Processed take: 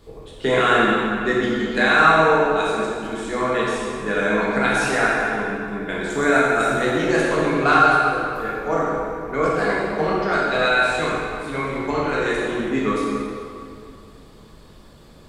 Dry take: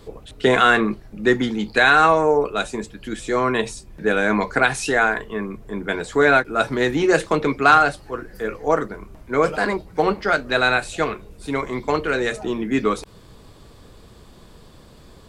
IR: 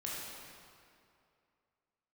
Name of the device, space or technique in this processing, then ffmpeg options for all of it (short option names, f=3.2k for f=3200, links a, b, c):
stairwell: -filter_complex "[0:a]asettb=1/sr,asplit=3[a][b][c];[a]atrim=end=6.104[d];[b]atrim=start=6.1:end=6.76,asetpts=PTS-STARTPTS,afade=t=in:d=0.004:c=qsin,afade=t=out:st=0.656:d=0.004:c=qsin,highshelf=f=5.3k:t=q:w=1.5:g=9[e];[c]atrim=start=6.756[f];[d][e]acrossfade=d=0.004:c1=hsin:c2=qsin[g];[g][f]acrossfade=d=0.004:c1=qsin:c2=hsin[h];[1:a]atrim=start_sample=2205[i];[h][i]afir=irnorm=-1:irlink=0,volume=-1.5dB"